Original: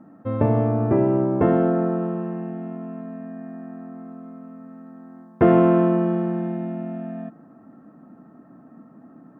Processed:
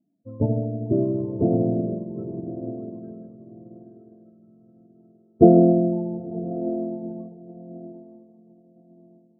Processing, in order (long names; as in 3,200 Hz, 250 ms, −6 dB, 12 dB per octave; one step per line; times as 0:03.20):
running median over 41 samples
spectral peaks only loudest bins 16
feedback delay with all-pass diffusion 968 ms, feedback 51%, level −5 dB
expander for the loud parts 2.5 to 1, over −34 dBFS
level +6 dB